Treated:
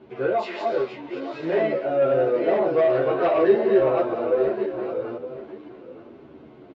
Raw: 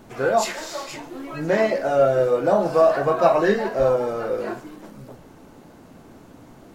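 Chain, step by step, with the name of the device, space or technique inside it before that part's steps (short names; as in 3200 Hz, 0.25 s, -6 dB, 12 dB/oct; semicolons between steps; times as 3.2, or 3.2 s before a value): reverse delay 0.517 s, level -2 dB; 2.78–3.42 bell 3200 Hz +4.5 dB 1.9 oct; echo 0.915 s -14.5 dB; barber-pole flanger into a guitar amplifier (endless flanger 10.3 ms -1.1 Hz; soft clip -13.5 dBFS, distortion -16 dB; speaker cabinet 86–3400 Hz, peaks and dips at 97 Hz -5 dB, 180 Hz -8 dB, 380 Hz +9 dB, 840 Hz -4 dB, 1200 Hz -3 dB, 1700 Hz -5 dB)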